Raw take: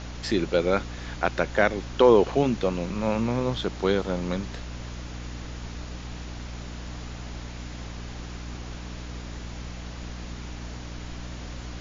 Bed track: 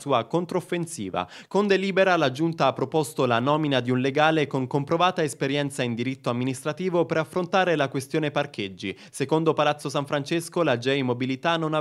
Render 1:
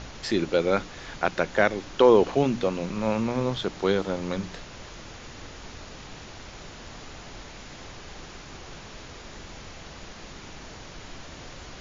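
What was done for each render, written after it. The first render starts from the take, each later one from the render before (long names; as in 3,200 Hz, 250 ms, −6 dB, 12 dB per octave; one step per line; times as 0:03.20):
hum removal 60 Hz, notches 5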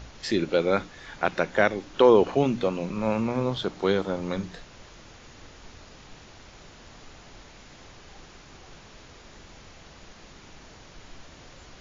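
noise reduction from a noise print 6 dB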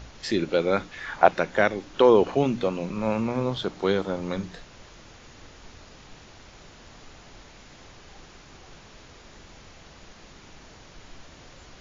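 0:00.91–0:01.31: parametric band 2,900 Hz → 580 Hz +11.5 dB 1.2 octaves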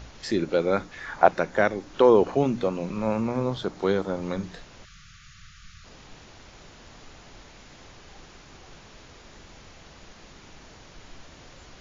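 0:04.85–0:05.85: time-frequency box erased 210–1,100 Hz
dynamic equaliser 3,000 Hz, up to −6 dB, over −45 dBFS, Q 1.3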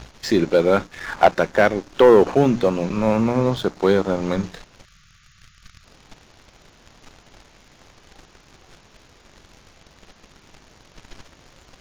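leveller curve on the samples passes 2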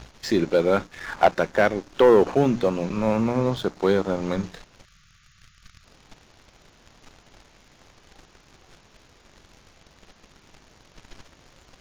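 level −3.5 dB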